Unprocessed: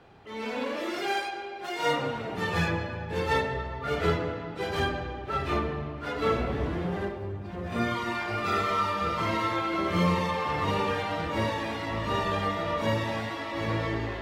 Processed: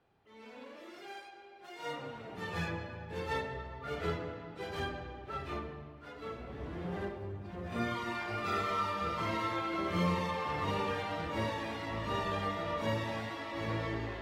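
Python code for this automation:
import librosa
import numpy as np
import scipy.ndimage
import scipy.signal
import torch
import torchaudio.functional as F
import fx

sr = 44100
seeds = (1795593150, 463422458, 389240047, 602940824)

y = fx.gain(x, sr, db=fx.line((1.25, -18.0), (2.61, -9.5), (5.27, -9.5), (6.37, -17.5), (6.97, -6.5)))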